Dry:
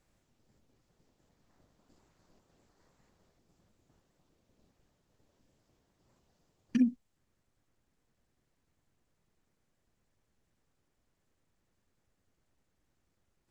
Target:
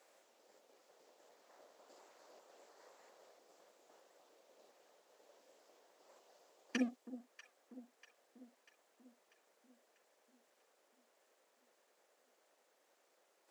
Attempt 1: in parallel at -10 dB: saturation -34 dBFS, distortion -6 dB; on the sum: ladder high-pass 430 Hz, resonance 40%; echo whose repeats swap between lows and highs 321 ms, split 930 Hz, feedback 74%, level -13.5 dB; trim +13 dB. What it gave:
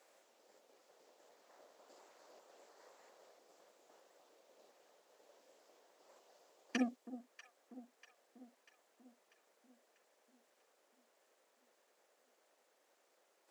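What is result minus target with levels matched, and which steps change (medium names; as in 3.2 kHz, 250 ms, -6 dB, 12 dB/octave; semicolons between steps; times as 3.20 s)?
saturation: distortion -4 dB
change: saturation -45 dBFS, distortion -1 dB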